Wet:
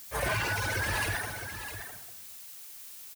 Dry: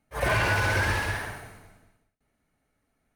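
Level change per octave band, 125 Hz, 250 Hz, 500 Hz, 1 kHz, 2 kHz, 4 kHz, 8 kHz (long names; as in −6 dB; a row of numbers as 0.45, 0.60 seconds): −6.5, −6.0, −6.0, −5.5, −4.5, −2.0, +3.0 decibels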